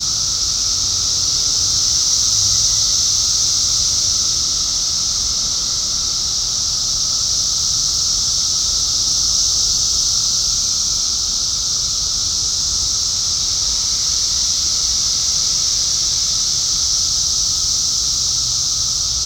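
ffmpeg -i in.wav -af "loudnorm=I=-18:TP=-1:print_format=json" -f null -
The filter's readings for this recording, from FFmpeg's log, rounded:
"input_i" : "-14.1",
"input_tp" : "-1.9",
"input_lra" : "2.1",
"input_thresh" : "-24.1",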